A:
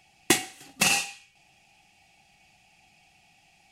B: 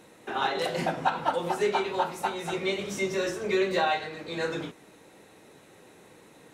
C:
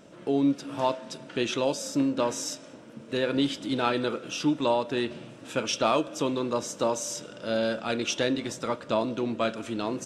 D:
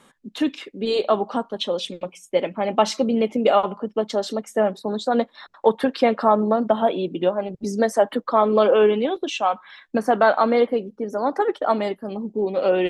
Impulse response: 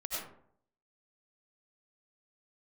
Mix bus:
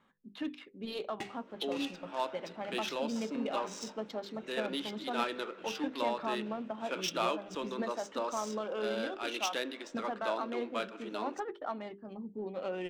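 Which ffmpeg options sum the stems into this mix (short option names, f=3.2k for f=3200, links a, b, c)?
-filter_complex "[0:a]highshelf=f=5.8k:g=-6.5,adelay=900,volume=-14.5dB[a];[1:a]acompressor=threshold=-35dB:ratio=6,adelay=1900,volume=-14.5dB[b];[2:a]highpass=f=330:w=0.5412,highpass=f=330:w=1.3066,adelay=1350,volume=-4.5dB[c];[3:a]bandreject=f=50:t=h:w=6,bandreject=f=100:t=h:w=6,bandreject=f=150:t=h:w=6,bandreject=f=200:t=h:w=6,bandreject=f=250:t=h:w=6,bandreject=f=300:t=h:w=6,bandreject=f=350:t=h:w=6,bandreject=f=400:t=h:w=6,bandreject=f=450:t=h:w=6,bandreject=f=500:t=h:w=6,alimiter=limit=-11.5dB:level=0:latency=1:release=465,volume=-11dB,asplit=2[d][e];[e]apad=whole_len=203597[f];[a][f]sidechaincompress=threshold=-39dB:ratio=8:attack=36:release=155[g];[g][b][c][d]amix=inputs=4:normalize=0,equalizer=f=490:w=0.87:g=-6,adynamicsmooth=sensitivity=7.5:basefreq=2.8k"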